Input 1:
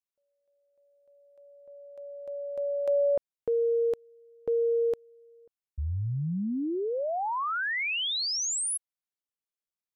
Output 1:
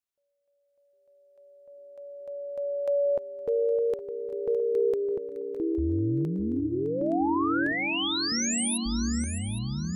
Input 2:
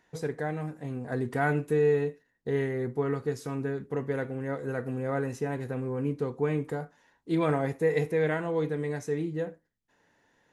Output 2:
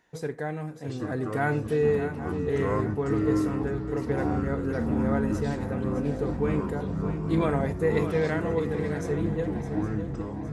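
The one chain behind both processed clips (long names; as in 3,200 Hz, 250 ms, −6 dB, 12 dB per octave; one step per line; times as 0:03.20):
delay with pitch and tempo change per echo 683 ms, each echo −6 semitones, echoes 3
feedback echo with a long and a short gap by turns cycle 814 ms, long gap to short 3 to 1, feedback 40%, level −10.5 dB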